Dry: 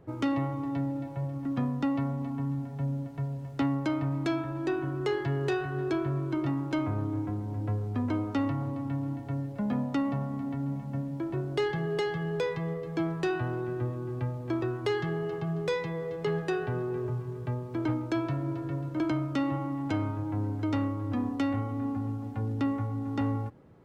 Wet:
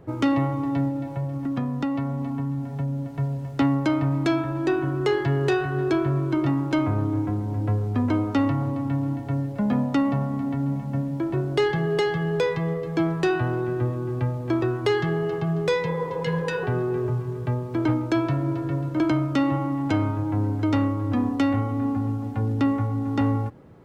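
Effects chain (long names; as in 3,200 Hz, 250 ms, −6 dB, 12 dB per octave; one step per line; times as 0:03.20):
0:00.88–0:03.14: downward compressor 2.5 to 1, threshold −32 dBFS, peak gain reduction 5.5 dB
0:15.86–0:16.61: healed spectral selection 250–1,300 Hz before
level +7 dB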